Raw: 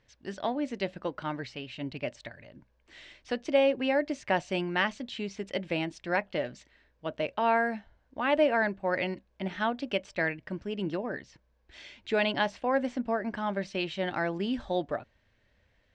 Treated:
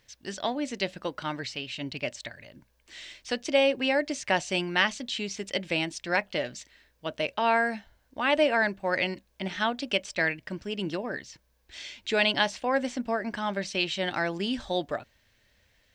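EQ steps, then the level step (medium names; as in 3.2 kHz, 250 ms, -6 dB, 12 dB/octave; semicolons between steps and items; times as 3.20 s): treble shelf 2.5 kHz +9.5 dB; treble shelf 6 kHz +9 dB; 0.0 dB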